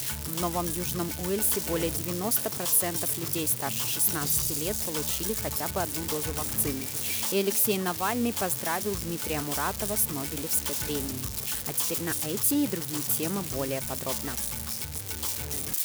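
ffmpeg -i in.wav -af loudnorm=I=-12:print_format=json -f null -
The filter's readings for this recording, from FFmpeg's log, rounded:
"input_i" : "-27.6",
"input_tp" : "-13.5",
"input_lra" : "3.2",
"input_thresh" : "-37.6",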